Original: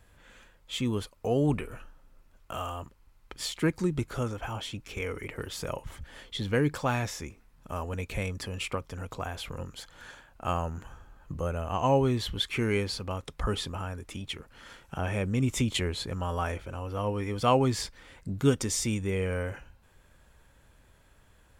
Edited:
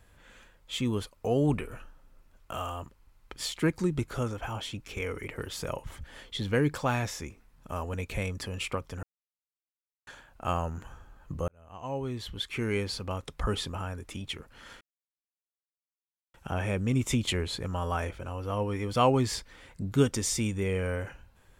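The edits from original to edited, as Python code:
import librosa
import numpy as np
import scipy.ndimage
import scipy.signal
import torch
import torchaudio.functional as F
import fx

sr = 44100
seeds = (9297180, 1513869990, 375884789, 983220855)

y = fx.edit(x, sr, fx.silence(start_s=9.03, length_s=1.04),
    fx.fade_in_span(start_s=11.48, length_s=1.61),
    fx.insert_silence(at_s=14.81, length_s=1.53), tone=tone)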